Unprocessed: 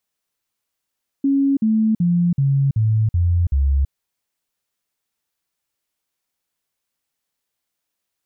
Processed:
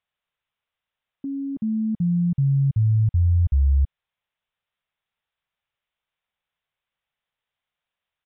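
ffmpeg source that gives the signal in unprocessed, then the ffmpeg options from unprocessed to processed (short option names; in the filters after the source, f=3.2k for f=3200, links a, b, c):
-f lavfi -i "aevalsrc='0.211*clip(min(mod(t,0.38),0.33-mod(t,0.38))/0.005,0,1)*sin(2*PI*276*pow(2,-floor(t/0.38)/3)*mod(t,0.38))':d=2.66:s=44100"
-af "equalizer=f=300:t=o:w=1:g=-12.5,aresample=8000,aresample=44100"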